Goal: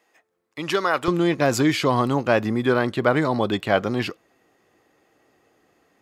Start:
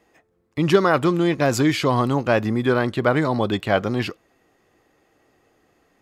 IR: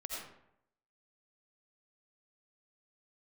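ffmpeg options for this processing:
-af "asetnsamples=nb_out_samples=441:pad=0,asendcmd='1.08 highpass f 120',highpass=frequency=880:poles=1"

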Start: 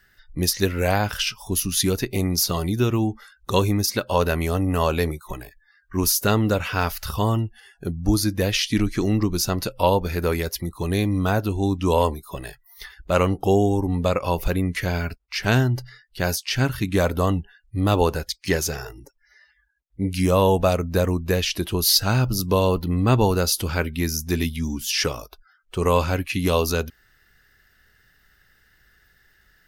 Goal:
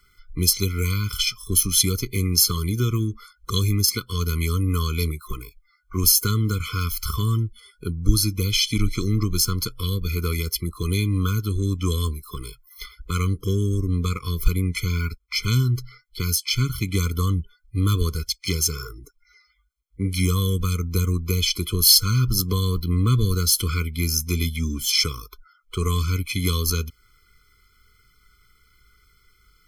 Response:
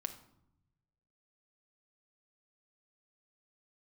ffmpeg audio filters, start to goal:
-filter_complex "[0:a]equalizer=frequency=240:width=0.44:gain=-8.5,acrossover=split=210|3000[link_01][link_02][link_03];[link_02]acompressor=threshold=-37dB:ratio=4[link_04];[link_01][link_04][link_03]amix=inputs=3:normalize=0,asplit=2[link_05][link_06];[link_06]aeval=exprs='sgn(val(0))*max(abs(val(0))-0.0168,0)':channel_layout=same,volume=-10dB[link_07];[link_05][link_07]amix=inputs=2:normalize=0,afftfilt=real='re*eq(mod(floor(b*sr/1024/500),2),0)':imag='im*eq(mod(floor(b*sr/1024/500),2),0)':win_size=1024:overlap=0.75,volume=6dB"

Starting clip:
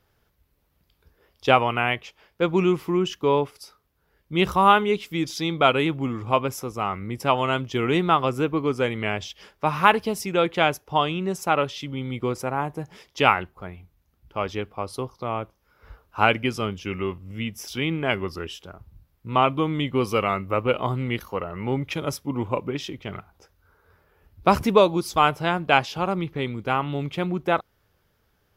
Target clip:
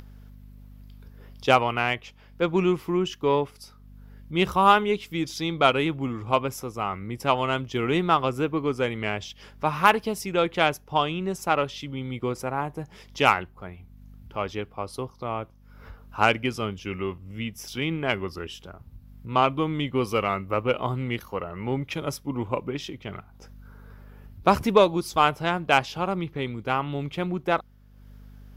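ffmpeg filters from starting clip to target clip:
ffmpeg -i in.wav -af "aeval=exprs='0.891*(cos(1*acos(clip(val(0)/0.891,-1,1)))-cos(1*PI/2))+0.0447*(cos(4*acos(clip(val(0)/0.891,-1,1)))-cos(4*PI/2))+0.0708*(cos(6*acos(clip(val(0)/0.891,-1,1)))-cos(6*PI/2))+0.0178*(cos(7*acos(clip(val(0)/0.891,-1,1)))-cos(7*PI/2))+0.0355*(cos(8*acos(clip(val(0)/0.891,-1,1)))-cos(8*PI/2))':channel_layout=same,aeval=exprs='val(0)+0.00251*(sin(2*PI*50*n/s)+sin(2*PI*2*50*n/s)/2+sin(2*PI*3*50*n/s)/3+sin(2*PI*4*50*n/s)/4+sin(2*PI*5*50*n/s)/5)':channel_layout=same,acompressor=mode=upward:threshold=-36dB:ratio=2.5,volume=-1dB" out.wav

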